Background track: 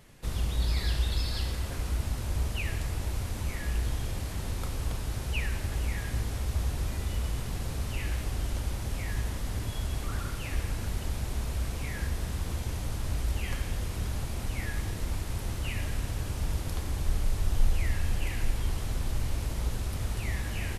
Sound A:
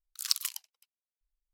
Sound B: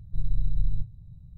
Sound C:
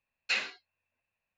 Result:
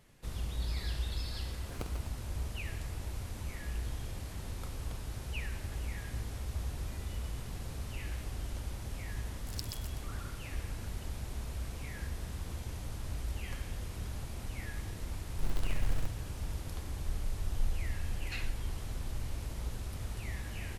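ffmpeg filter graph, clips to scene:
-filter_complex "[1:a]asplit=2[a][b];[0:a]volume=-7.5dB[c];[a]acrusher=samples=25:mix=1:aa=0.000001[d];[b]aecho=1:1:126|252|378:0.596|0.107|0.0193[e];[2:a]acrusher=bits=4:mode=log:mix=0:aa=0.000001[f];[d]atrim=end=1.53,asetpts=PTS-STARTPTS,volume=-14.5dB,afade=t=in:d=0.004:c=hsin,afade=t=out:st=1.526:d=0.004:c=hsin,adelay=1500[g];[e]atrim=end=1.53,asetpts=PTS-STARTPTS,volume=-15dB,afade=t=in:d=0.004:c=hsin,afade=t=out:st=1.526:d=0.004:c=hsin,adelay=9280[h];[f]atrim=end=1.37,asetpts=PTS-STARTPTS,volume=-7.5dB,afade=t=in:d=0.004:c=hsin,afade=t=out:st=1.366:d=0.004:c=hsin,adelay=15250[i];[3:a]atrim=end=1.37,asetpts=PTS-STARTPTS,volume=-13dB,afade=t=in:d=0.004:c=hsin,afade=t=out:st=1.366:d=0.004:c=hsin,adelay=18020[j];[c][g][h][i][j]amix=inputs=5:normalize=0"

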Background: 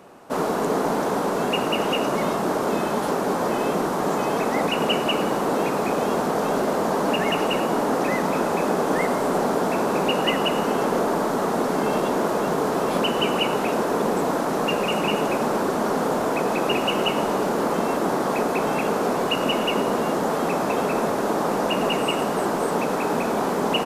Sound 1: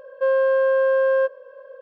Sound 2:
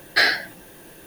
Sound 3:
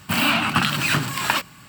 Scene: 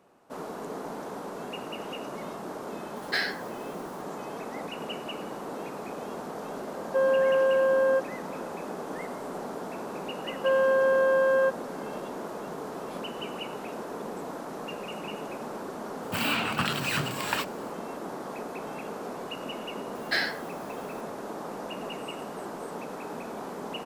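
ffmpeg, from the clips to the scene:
-filter_complex "[2:a]asplit=2[a][b];[1:a]asplit=2[c][d];[0:a]volume=-14.5dB[e];[d]lowshelf=f=390:g=-11.5[f];[a]atrim=end=1.06,asetpts=PTS-STARTPTS,volume=-11dB,afade=t=in:d=0.004:c=hsin,afade=t=out:st=1.056:d=0.004:c=hsin,adelay=2960[g];[c]atrim=end=1.81,asetpts=PTS-STARTPTS,volume=-4.5dB,afade=t=in:d=0.004:c=hsin,afade=t=out:st=1.806:d=0.004:c=hsin,adelay=6730[h];[f]atrim=end=1.81,asetpts=PTS-STARTPTS,volume=-0.5dB,afade=t=in:d=0.004:c=hsin,afade=t=out:st=1.806:d=0.004:c=hsin,adelay=10230[i];[3:a]atrim=end=1.68,asetpts=PTS-STARTPTS,volume=-8.5dB,afade=t=in:d=0.004:c=hsin,afade=t=out:st=1.676:d=0.004:c=hsin,adelay=16030[j];[b]atrim=end=1.06,asetpts=PTS-STARTPTS,volume=-10dB,afade=t=in:d=0.004:c=hsin,afade=t=out:st=1.056:d=0.004:c=hsin,adelay=19950[k];[e][g][h][i][j][k]amix=inputs=6:normalize=0"

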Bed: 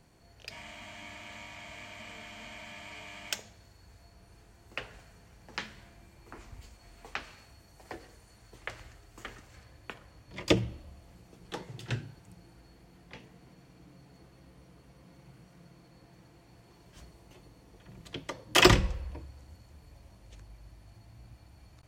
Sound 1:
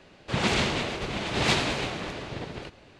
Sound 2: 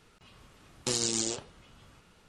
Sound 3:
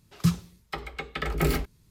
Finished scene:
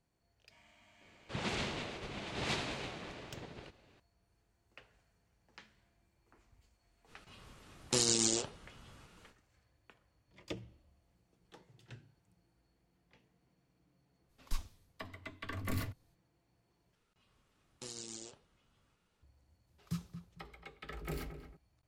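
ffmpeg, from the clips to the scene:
-filter_complex "[2:a]asplit=2[a][b];[3:a]asplit=2[c][d];[0:a]volume=-18.5dB[e];[c]afreqshift=-150[f];[d]asplit=2[g][h];[h]adelay=225,lowpass=f=2k:p=1,volume=-10dB,asplit=2[i][j];[j]adelay=225,lowpass=f=2k:p=1,volume=0.27,asplit=2[k][l];[l]adelay=225,lowpass=f=2k:p=1,volume=0.27[m];[g][i][k][m]amix=inputs=4:normalize=0[n];[e]asplit=2[o][p];[o]atrim=end=16.954[q];[b]atrim=end=2.28,asetpts=PTS-STARTPTS,volume=-17dB[r];[p]atrim=start=19.226[s];[1:a]atrim=end=2.99,asetpts=PTS-STARTPTS,volume=-12.5dB,afade=t=in:d=0.004:c=hsin,afade=t=out:st=2.986:d=0.004:c=hsin,adelay=1010[t];[a]atrim=end=2.28,asetpts=PTS-STARTPTS,volume=-0.5dB,afade=t=in:d=0.05,afade=t=out:st=2.23:d=0.05,adelay=311346S[u];[f]atrim=end=1.9,asetpts=PTS-STARTPTS,volume=-12dB,afade=t=in:d=0.05,afade=t=out:st=1.85:d=0.05,adelay=14270[v];[n]atrim=end=1.9,asetpts=PTS-STARTPTS,volume=-16.5dB,afade=t=in:d=0.004:c=hsin,afade=t=out:st=1.896:d=0.004:c=hsin,adelay=19670[w];[q][r]acrossfade=d=0.004:c1=hsin:c2=hsin[x];[x][s]acrossfade=d=0.004:c1=hsin:c2=hsin[y];[y][t][u][v][w]amix=inputs=5:normalize=0"

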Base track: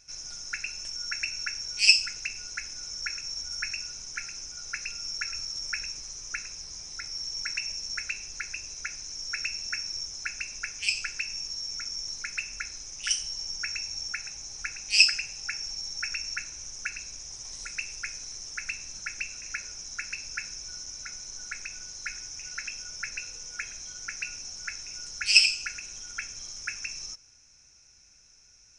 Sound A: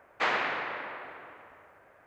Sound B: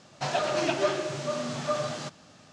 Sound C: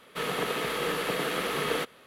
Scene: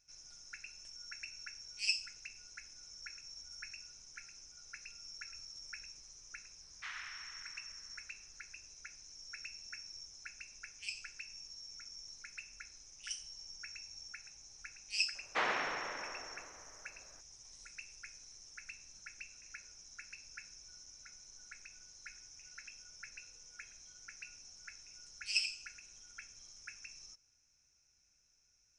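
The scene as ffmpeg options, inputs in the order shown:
-filter_complex "[1:a]asplit=2[a][b];[0:a]volume=-15.5dB[c];[a]highpass=f=1.4k:w=0.5412,highpass=f=1.4k:w=1.3066,atrim=end=2.06,asetpts=PTS-STARTPTS,volume=-15dB,afade=t=in:d=0.004:c=hsin,afade=t=out:st=2.056:d=0.004:c=hsin,adelay=6620[d];[b]atrim=end=2.06,asetpts=PTS-STARTPTS,volume=-6dB,afade=t=in:d=0.004:c=hsin,afade=t=out:st=2.056:d=0.004:c=hsin,adelay=15150[e];[c][d][e]amix=inputs=3:normalize=0"

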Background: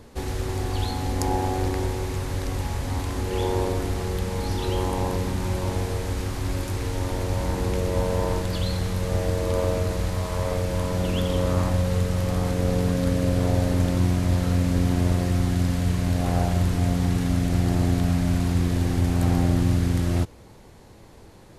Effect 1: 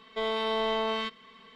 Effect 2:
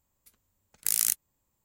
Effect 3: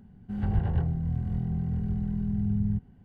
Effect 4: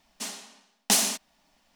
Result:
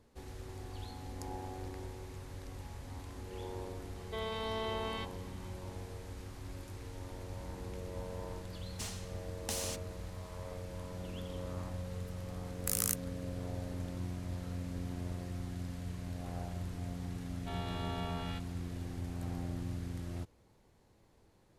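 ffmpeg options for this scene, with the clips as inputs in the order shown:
-filter_complex "[1:a]asplit=2[a][b];[0:a]volume=-18.5dB[c];[4:a]acompressor=threshold=-35dB:ratio=4:attack=31:release=28:knee=1:detection=rms[d];[2:a]highpass=f=1.1k:t=q:w=4.5[e];[b]aeval=exprs='val(0)*sin(2*PI*260*n/s)':c=same[f];[a]atrim=end=1.55,asetpts=PTS-STARTPTS,volume=-9.5dB,afade=t=in:d=0.004:c=hsin,afade=t=out:st=1.546:d=0.004:c=hsin,adelay=3960[g];[d]atrim=end=1.75,asetpts=PTS-STARTPTS,volume=-7dB,afade=t=in:d=0.004:c=hsin,afade=t=out:st=1.746:d=0.004:c=hsin,adelay=8590[h];[e]atrim=end=1.64,asetpts=PTS-STARTPTS,volume=-8dB,afade=t=in:d=0.004:c=hsin,afade=t=out:st=1.636:d=0.004:c=hsin,adelay=11810[i];[f]atrim=end=1.55,asetpts=PTS-STARTPTS,volume=-10.5dB,afade=t=in:d=0.004:c=hsin,afade=t=out:st=1.546:d=0.004:c=hsin,adelay=17300[j];[c][g][h][i][j]amix=inputs=5:normalize=0"

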